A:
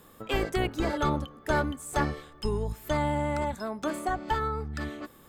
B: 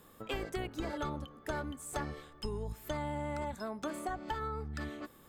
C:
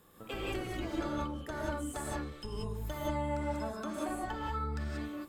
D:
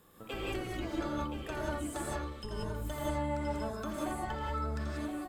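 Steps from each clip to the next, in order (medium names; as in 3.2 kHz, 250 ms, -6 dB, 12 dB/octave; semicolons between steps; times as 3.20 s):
compression, threshold -29 dBFS, peak gain reduction 8 dB; trim -4.5 dB
gated-style reverb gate 210 ms rising, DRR -3.5 dB; trim -4 dB
delay 1022 ms -8.5 dB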